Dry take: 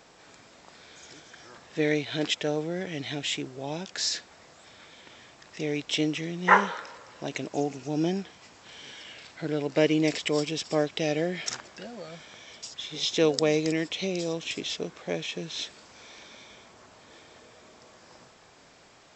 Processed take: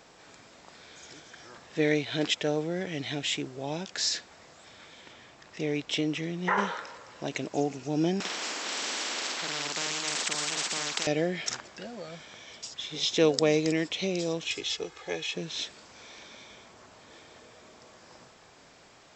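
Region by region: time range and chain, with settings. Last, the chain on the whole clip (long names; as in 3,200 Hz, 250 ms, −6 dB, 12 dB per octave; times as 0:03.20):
0:05.12–0:06.58: high-shelf EQ 4,100 Hz −4.5 dB + downward compressor 4 to 1, threshold −23 dBFS
0:08.20–0:11.07: high-pass filter 300 Hz 24 dB per octave + double-tracking delay 48 ms −3 dB + every bin compressed towards the loudest bin 10 to 1
0:14.45–0:15.34: parametric band 260 Hz −7 dB 2.5 octaves + comb filter 2.4 ms, depth 66%
whole clip: no processing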